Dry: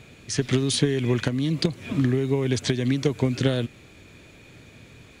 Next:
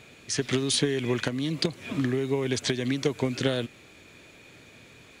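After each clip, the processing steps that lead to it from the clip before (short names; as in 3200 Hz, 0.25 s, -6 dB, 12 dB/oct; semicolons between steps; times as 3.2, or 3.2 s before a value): low shelf 200 Hz -11 dB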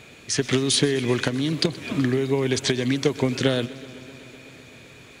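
warbling echo 0.127 s, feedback 80%, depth 73 cents, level -20 dB; gain +4.5 dB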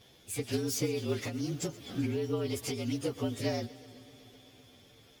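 inharmonic rescaling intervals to 115%; gain -8.5 dB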